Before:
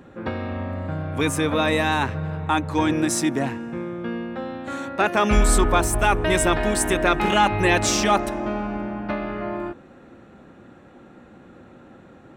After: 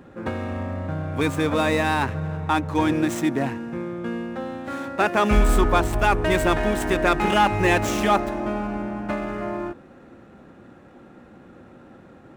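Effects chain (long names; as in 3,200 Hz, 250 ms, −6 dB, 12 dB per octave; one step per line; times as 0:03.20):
running median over 9 samples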